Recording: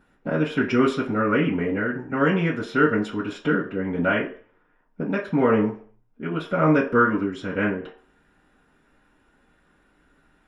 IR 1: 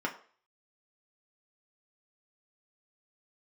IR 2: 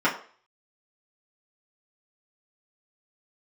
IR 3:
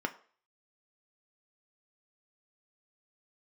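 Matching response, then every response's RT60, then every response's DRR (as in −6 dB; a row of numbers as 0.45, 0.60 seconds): 2; 0.45, 0.45, 0.45 seconds; −1.0, −9.0, 5.0 decibels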